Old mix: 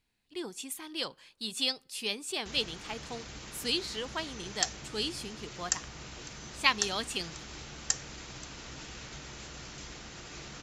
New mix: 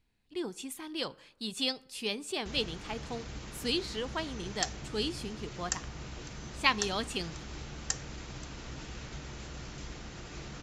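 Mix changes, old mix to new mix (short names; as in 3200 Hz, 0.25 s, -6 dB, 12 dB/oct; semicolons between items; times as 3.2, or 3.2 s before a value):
speech: send +9.5 dB; master: add tilt -1.5 dB/oct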